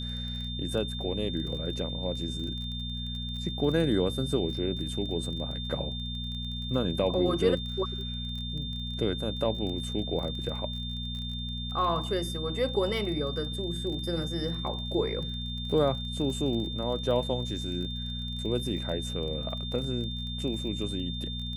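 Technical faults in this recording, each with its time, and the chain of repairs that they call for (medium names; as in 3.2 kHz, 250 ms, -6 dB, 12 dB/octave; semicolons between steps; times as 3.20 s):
crackle 23 per s -37 dBFS
hum 60 Hz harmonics 4 -36 dBFS
whine 3.6 kHz -37 dBFS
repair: de-click; band-stop 3.6 kHz, Q 30; de-hum 60 Hz, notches 4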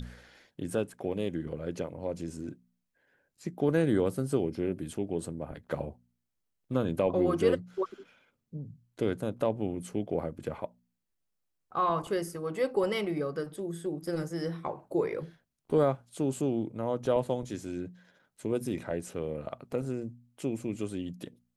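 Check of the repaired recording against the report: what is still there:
nothing left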